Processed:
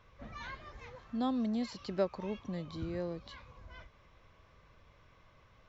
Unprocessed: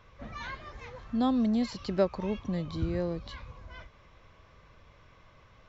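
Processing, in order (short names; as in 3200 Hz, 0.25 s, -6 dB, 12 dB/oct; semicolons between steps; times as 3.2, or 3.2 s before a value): 0.95–3.57 low shelf 110 Hz -9 dB; gain -5 dB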